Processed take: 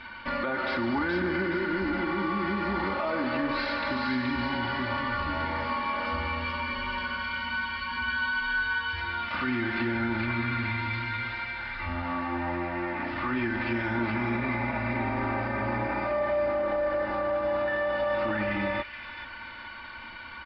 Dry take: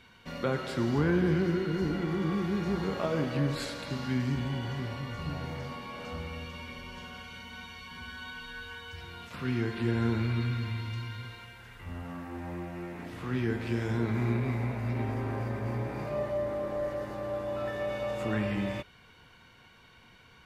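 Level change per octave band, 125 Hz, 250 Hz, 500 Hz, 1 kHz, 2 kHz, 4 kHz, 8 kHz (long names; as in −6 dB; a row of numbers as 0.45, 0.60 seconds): −4.5 dB, +1.5 dB, +3.5 dB, +10.5 dB, +12.0 dB, +6.0 dB, can't be measured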